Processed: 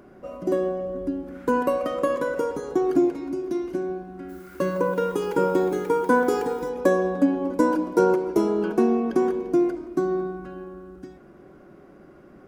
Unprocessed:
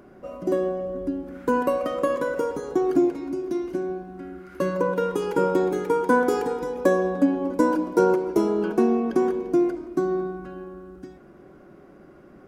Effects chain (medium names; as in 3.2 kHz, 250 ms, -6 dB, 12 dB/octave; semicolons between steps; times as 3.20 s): 4.28–6.68 s: added noise blue -58 dBFS